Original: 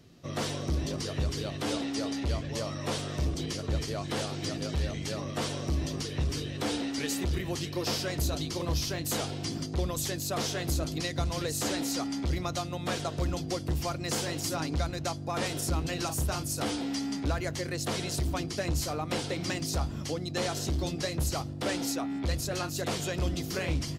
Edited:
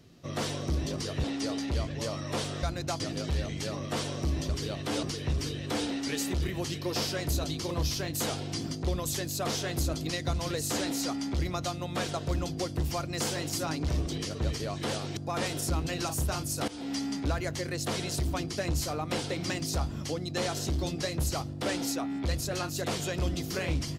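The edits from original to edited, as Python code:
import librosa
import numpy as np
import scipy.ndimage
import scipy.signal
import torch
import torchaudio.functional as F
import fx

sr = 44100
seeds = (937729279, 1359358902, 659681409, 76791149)

y = fx.edit(x, sr, fx.move(start_s=1.24, length_s=0.54, to_s=5.94),
    fx.swap(start_s=3.17, length_s=1.28, other_s=14.8, other_length_s=0.37),
    fx.fade_in_from(start_s=16.68, length_s=0.27, floor_db=-17.0), tone=tone)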